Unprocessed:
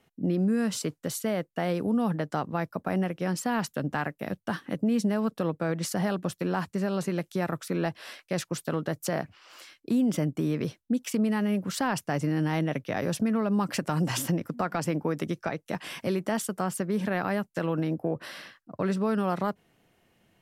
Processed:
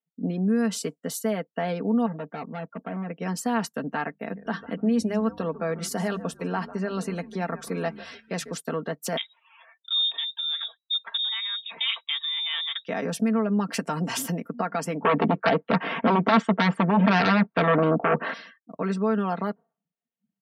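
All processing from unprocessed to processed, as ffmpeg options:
-filter_complex "[0:a]asettb=1/sr,asplit=3[s0][s1][s2];[s0]atrim=end=2.064[s3];[s1]atrim=start=2.06:end=3.1,asetpts=PTS-STARTPTS,afade=t=in:d=0.004:c=qsin,afade=t=out:st=1.036:d=0.004:c=qsin,lowpass=1700,volume=29.9,asoftclip=hard,volume=0.0335[s4];[s2]atrim=start=3.096[s5];[s3][s4]acrossfade=d=0.004:c1=hsin:c2=qsin[s6];[s6][s5]acrossfade=d=0.004:c1=qsin:c2=hsin,asettb=1/sr,asplit=3[s7][s8][s9];[s7]atrim=end=4.114[s10];[s8]atrim=start=4.11:end=8.55,asetpts=PTS-STARTPTS,afade=t=in:d=0.004:c=qsin,afade=t=out:st=4.436:d=0.004:c=qsin,bandreject=f=50:t=h:w=6,bandreject=f=100:t=h:w=6,bandreject=f=150:t=h:w=6,bandreject=f=200:t=h:w=6,bandreject=f=250:t=h:w=6,asplit=5[s11][s12][s13][s14][s15];[s12]adelay=146,afreqshift=-130,volume=0.188[s16];[s13]adelay=292,afreqshift=-260,volume=0.0733[s17];[s14]adelay=438,afreqshift=-390,volume=0.0285[s18];[s15]adelay=584,afreqshift=-520,volume=0.0112[s19];[s11][s16][s17][s18][s19]amix=inputs=5:normalize=0,atrim=end_sample=195804[s20];[s9]atrim=start=8.546[s21];[s10][s20]acrossfade=d=0.004:c1=hsin:c2=qsin[s22];[s22][s21]acrossfade=d=0.004:c1=qsin:c2=hsin,asettb=1/sr,asplit=3[s23][s24][s25];[s23]atrim=end=9.174[s26];[s24]atrim=start=9.17:end=12.85,asetpts=PTS-STARTPTS,afade=t=in:d=0.004:c=qsin,afade=t=out:st=3.676:d=0.004:c=qsin,equalizer=f=180:w=1.1:g=-7.5,lowpass=f=3300:t=q:w=0.5098,lowpass=f=3300:t=q:w=0.6013,lowpass=f=3300:t=q:w=0.9,lowpass=f=3300:t=q:w=2.563,afreqshift=-3900[s27];[s25]atrim=start=12.846[s28];[s26][s27]acrossfade=d=0.004:c1=hsin:c2=qsin[s29];[s29][s28]acrossfade=d=0.004:c1=qsin:c2=hsin,asettb=1/sr,asplit=3[s30][s31][s32];[s30]atrim=end=15.024[s33];[s31]atrim=start=15.02:end=18.34,asetpts=PTS-STARTPTS,afade=t=in:d=0.004:c=qsin,afade=t=out:st=3.316:d=0.004:c=qsin,lowpass=1500,aeval=exprs='0.158*sin(PI/2*3.55*val(0)/0.158)':c=same[s34];[s32]atrim=start=18.336[s35];[s33][s34]acrossfade=d=0.004:c1=hsin:c2=qsin[s36];[s36][s35]acrossfade=d=0.004:c1=qsin:c2=hsin,afftdn=nr=34:nf=-50,highpass=180,aecho=1:1:4.4:0.66"

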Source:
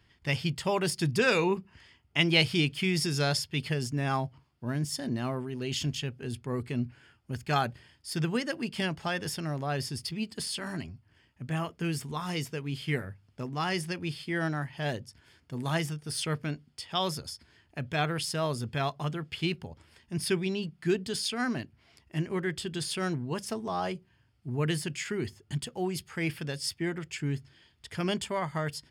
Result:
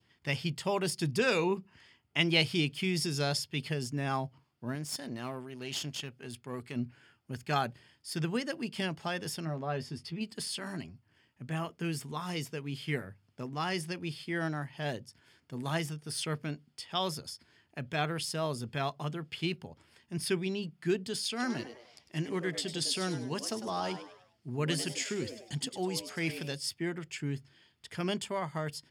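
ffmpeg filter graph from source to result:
-filter_complex "[0:a]asettb=1/sr,asplit=3[s0][s1][s2];[s0]atrim=end=4.754[s3];[s1]atrim=start=4.75:end=6.76,asetpts=PTS-STARTPTS,afade=t=in:d=0.004:c=qsin,afade=t=out:st=2.006:d=0.004:c=qsin,tiltshelf=f=700:g=-3.5,aeval=exprs='(tanh(14.1*val(0)+0.6)-tanh(0.6))/14.1':c=same[s4];[s2]atrim=start=6.756[s5];[s3][s4]acrossfade=d=0.004:c1=hsin:c2=qsin[s6];[s6][s5]acrossfade=d=0.004:c1=qsin:c2=hsin,asettb=1/sr,asplit=3[s7][s8][s9];[s7]atrim=end=9.454[s10];[s8]atrim=start=9.45:end=10.21,asetpts=PTS-STARTPTS,afade=t=in:d=0.004:c=qsin,afade=t=out:st=0.756:d=0.004:c=qsin,aemphasis=mode=reproduction:type=75kf,asplit=2[s11][s12];[s12]adelay=12,volume=0.447[s13];[s11][s13]amix=inputs=2:normalize=0,atrim=end_sample=33516[s14];[s9]atrim=start=10.206[s15];[s10][s14]acrossfade=d=0.004:c1=hsin:c2=qsin[s16];[s16][s15]acrossfade=d=0.004:c1=qsin:c2=hsin,asettb=1/sr,asplit=3[s17][s18][s19];[s17]atrim=end=21.304[s20];[s18]atrim=start=21.3:end=26.55,asetpts=PTS-STARTPTS,afade=t=in:d=0.004:c=qsin,afade=t=out:st=5.246:d=0.004:c=qsin,equalizer=f=5400:t=o:w=1.5:g=7.5,asplit=5[s21][s22][s23][s24][s25];[s22]adelay=101,afreqshift=120,volume=0.282[s26];[s23]adelay=202,afreqshift=240,volume=0.107[s27];[s24]adelay=303,afreqshift=360,volume=0.0407[s28];[s25]adelay=404,afreqshift=480,volume=0.0155[s29];[s21][s26][s27][s28][s29]amix=inputs=5:normalize=0,atrim=end_sample=231525[s30];[s19]atrim=start=26.546[s31];[s20][s30]acrossfade=d=0.004:c1=hsin:c2=qsin[s32];[s32][s31]acrossfade=d=0.004:c1=qsin:c2=hsin,highpass=120,adynamicequalizer=threshold=0.00562:dfrequency=1700:dqfactor=1.3:tfrequency=1700:tqfactor=1.3:attack=5:release=100:ratio=0.375:range=2:mode=cutabove:tftype=bell,volume=0.75"

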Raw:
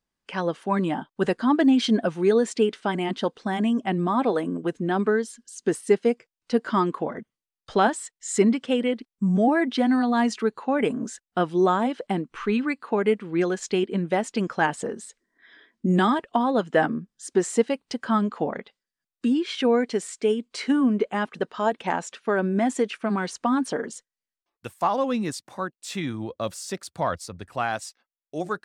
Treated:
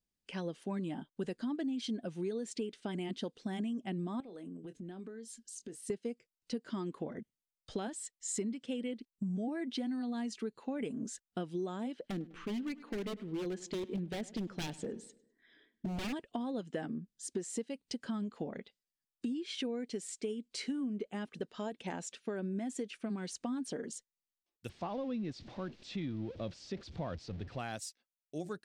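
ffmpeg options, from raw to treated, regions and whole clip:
-filter_complex "[0:a]asettb=1/sr,asplit=3[s0][s1][s2];[s0]atrim=end=4.204[s3];[s1]atrim=start=4.2:end=5.9,asetpts=PTS-STARTPTS,afade=t=in:d=0.004:c=qsin,afade=t=out:st=1.696:d=0.004:c=qsin,asplit=2[s4][s5];[s5]adelay=22,volume=0.237[s6];[s4][s6]amix=inputs=2:normalize=0,atrim=end_sample=74970,acompressor=threshold=0.0141:ratio=5:attack=3.2:release=140:knee=1:detection=peak[s7];[s2]atrim=start=5.896[s8];[s3][s7]acrossfade=d=0.004:c1=hsin:c2=qsin[s9];[s9][s8]acrossfade=d=0.004:c1=qsin:c2=hsin,asettb=1/sr,asplit=3[s10][s11][s12];[s10]atrim=end=11.944[s13];[s11]atrim=start=11.94:end=16.13,asetpts=PTS-STARTPTS,afade=t=in:d=0.004:c=qsin,afade=t=out:st=4.186:d=0.004:c=qsin,aemphasis=mode=reproduction:type=50kf,aeval=exprs='0.0944*(abs(mod(val(0)/0.0944+3,4)-2)-1)':c=same,asplit=2[s14][s15];[s15]adelay=101,lowpass=f=4800:p=1,volume=0.1,asplit=2[s16][s17];[s17]adelay=101,lowpass=f=4800:p=1,volume=0.47,asplit=2[s18][s19];[s19]adelay=101,lowpass=f=4800:p=1,volume=0.47,asplit=2[s20][s21];[s21]adelay=101,lowpass=f=4800:p=1,volume=0.47[s22];[s14][s16][s18][s20][s22]amix=inputs=5:normalize=0,atrim=end_sample=184779[s23];[s12]atrim=start=16.126[s24];[s13][s23]acrossfade=d=0.004:c1=hsin:c2=qsin[s25];[s25][s24]acrossfade=d=0.004:c1=qsin:c2=hsin,asettb=1/sr,asplit=3[s26][s27][s28];[s26]atrim=end=24.694[s29];[s27]atrim=start=24.69:end=27.59,asetpts=PTS-STARTPTS,afade=t=in:d=0.004:c=qsin,afade=t=out:st=2.896:d=0.004:c=qsin,aeval=exprs='val(0)+0.5*0.0168*sgn(val(0))':c=same,lowpass=f=4800:w=0.5412,lowpass=f=4800:w=1.3066,highshelf=f=2500:g=-7.5[s30];[s28]atrim=start=27.586[s31];[s29][s30]acrossfade=d=0.004:c1=hsin:c2=qsin[s32];[s32][s31]acrossfade=d=0.004:c1=qsin:c2=hsin,equalizer=f=1100:w=0.71:g=-13,acompressor=threshold=0.0316:ratio=6,volume=0.596"

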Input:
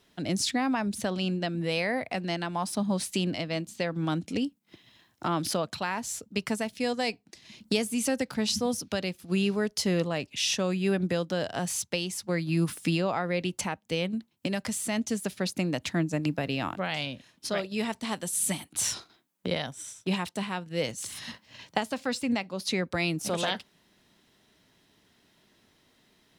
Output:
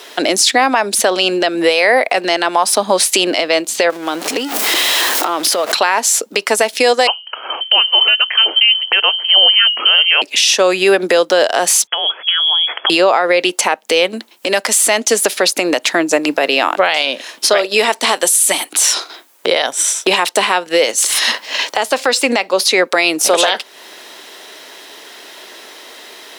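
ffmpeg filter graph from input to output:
-filter_complex "[0:a]asettb=1/sr,asplit=3[s0][s1][s2];[s0]atrim=end=3.904[s3];[s1]atrim=start=3.9:end=5.72,asetpts=PTS-STARTPTS,afade=t=in:d=0.004:c=qsin,afade=t=out:st=1.816:d=0.004:c=qsin,aeval=exprs='val(0)+0.5*0.0141*sgn(val(0))':c=same,acompressor=threshold=0.0141:ratio=16:attack=3.2:release=140:knee=1:detection=peak[s4];[s2]atrim=start=5.716[s5];[s3][s4]acrossfade=d=0.004:c1=hsin:c2=qsin[s6];[s6][s5]acrossfade=d=0.004:c1=qsin:c2=hsin,asettb=1/sr,asplit=3[s7][s8][s9];[s7]atrim=end=7.074[s10];[s8]atrim=start=7.07:end=10.22,asetpts=PTS-STARTPTS,afade=t=in:d=0.004:c=qsin,afade=t=out:st=3.146:d=0.004:c=qsin,bandreject=f=60:t=h:w=6,bandreject=f=120:t=h:w=6,bandreject=f=180:t=h:w=6,bandreject=f=240:t=h:w=6,bandreject=f=300:t=h:w=6,bandreject=f=360:t=h:w=6,bandreject=f=420:t=h:w=6,lowpass=f=2800:t=q:w=0.5098,lowpass=f=2800:t=q:w=0.6013,lowpass=f=2800:t=q:w=0.9,lowpass=f=2800:t=q:w=2.563,afreqshift=-3300[s11];[s9]atrim=start=10.216[s12];[s10][s11]acrossfade=d=0.004:c1=hsin:c2=qsin[s13];[s13][s12]acrossfade=d=0.004:c1=qsin:c2=hsin,asettb=1/sr,asplit=3[s14][s15][s16];[s14]atrim=end=11.874[s17];[s15]atrim=start=11.87:end=12.9,asetpts=PTS-STARTPTS,afade=t=in:d=0.004:c=qsin,afade=t=out:st=1.026:d=0.004:c=qsin,acompressor=threshold=0.0126:ratio=10:attack=3.2:release=140:knee=1:detection=peak,lowpass=f=3000:t=q:w=0.5098,lowpass=f=3000:t=q:w=0.6013,lowpass=f=3000:t=q:w=0.9,lowpass=f=3000:t=q:w=2.563,afreqshift=-3500[s18];[s16]atrim=start=12.896[s19];[s17][s18]acrossfade=d=0.004:c1=hsin:c2=qsin[s20];[s20][s19]acrossfade=d=0.004:c1=qsin:c2=hsin,highpass=f=390:w=0.5412,highpass=f=390:w=1.3066,acompressor=threshold=0.00708:ratio=2.5,alimiter=level_in=37.6:limit=0.891:release=50:level=0:latency=1,volume=0.891"

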